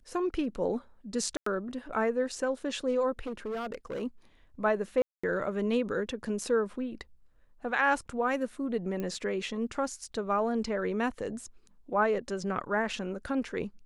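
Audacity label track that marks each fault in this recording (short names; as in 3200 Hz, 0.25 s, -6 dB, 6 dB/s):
1.370000	1.460000	gap 94 ms
3.190000	4.030000	clipped -31.5 dBFS
5.020000	5.240000	gap 0.215 s
9.000000	9.000000	pop -23 dBFS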